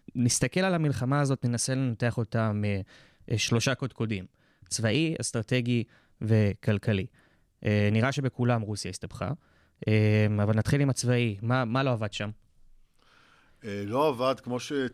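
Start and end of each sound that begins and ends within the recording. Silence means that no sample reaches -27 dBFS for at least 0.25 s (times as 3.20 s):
3.31–4.18 s
4.72–5.82 s
6.22–7.03 s
7.65–9.32 s
9.83–12.28 s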